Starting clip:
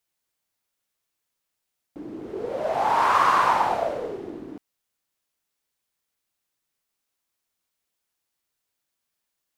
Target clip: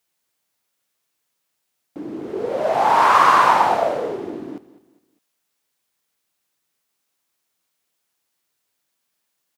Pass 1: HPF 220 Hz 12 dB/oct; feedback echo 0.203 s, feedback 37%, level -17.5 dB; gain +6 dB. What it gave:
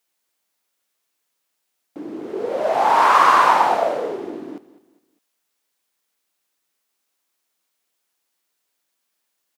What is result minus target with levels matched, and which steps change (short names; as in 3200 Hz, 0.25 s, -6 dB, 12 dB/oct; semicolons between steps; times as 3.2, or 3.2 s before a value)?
125 Hz band -6.0 dB
change: HPF 110 Hz 12 dB/oct